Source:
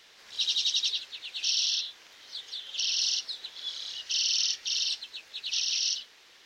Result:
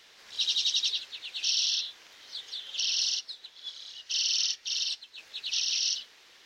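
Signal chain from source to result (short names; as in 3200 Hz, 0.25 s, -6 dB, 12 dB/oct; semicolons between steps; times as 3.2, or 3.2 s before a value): 3.03–5.18 upward expander 1.5:1, over -41 dBFS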